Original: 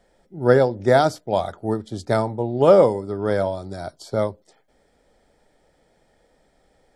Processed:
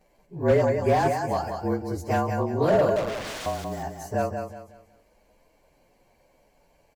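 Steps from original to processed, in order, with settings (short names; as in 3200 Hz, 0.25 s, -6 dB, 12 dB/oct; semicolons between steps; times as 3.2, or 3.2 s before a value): inharmonic rescaling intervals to 111%; in parallel at -1 dB: compressor, threshold -32 dBFS, peak gain reduction 19.5 dB; 2.96–3.46 on the sum: wrapped overs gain 26.5 dB; on a send: feedback echo 0.184 s, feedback 32%, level -6.5 dB; on the sum: slew limiter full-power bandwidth 150 Hz; gain -4 dB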